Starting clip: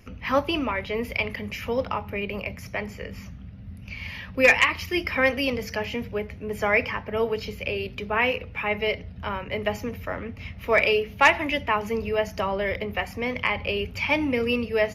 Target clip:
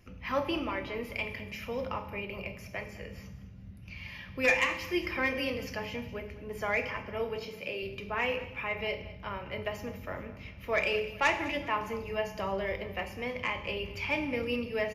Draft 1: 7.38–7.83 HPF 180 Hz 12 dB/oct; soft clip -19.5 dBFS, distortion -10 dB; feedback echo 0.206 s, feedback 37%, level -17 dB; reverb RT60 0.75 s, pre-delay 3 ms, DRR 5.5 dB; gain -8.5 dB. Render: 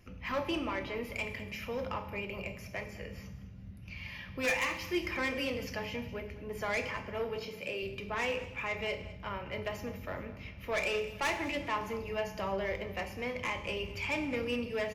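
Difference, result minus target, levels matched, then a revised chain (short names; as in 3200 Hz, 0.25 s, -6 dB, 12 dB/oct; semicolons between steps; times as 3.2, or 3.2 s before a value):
soft clip: distortion +13 dB
7.38–7.83 HPF 180 Hz 12 dB/oct; soft clip -8.5 dBFS, distortion -23 dB; feedback echo 0.206 s, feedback 37%, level -17 dB; reverb RT60 0.75 s, pre-delay 3 ms, DRR 5.5 dB; gain -8.5 dB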